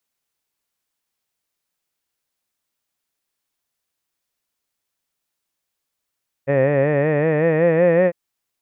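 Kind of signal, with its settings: formant-synthesis vowel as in head, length 1.65 s, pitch 134 Hz, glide +5 st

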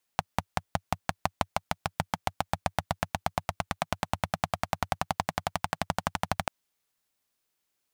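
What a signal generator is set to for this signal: single-cylinder engine model, changing speed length 6.29 s, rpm 600, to 1500, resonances 95/160/740 Hz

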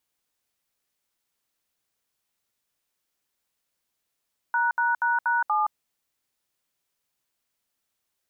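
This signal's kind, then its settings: DTMF "####7", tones 0.17 s, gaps 69 ms, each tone -23 dBFS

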